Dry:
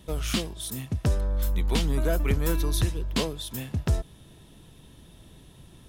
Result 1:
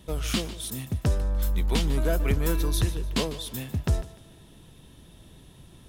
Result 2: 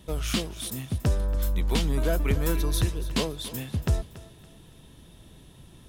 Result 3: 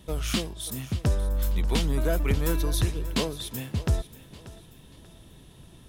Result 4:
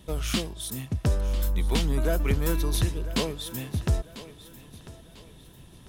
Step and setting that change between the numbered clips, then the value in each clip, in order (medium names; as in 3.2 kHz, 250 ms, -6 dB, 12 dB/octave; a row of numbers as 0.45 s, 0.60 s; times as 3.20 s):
thinning echo, time: 149 ms, 282 ms, 586 ms, 996 ms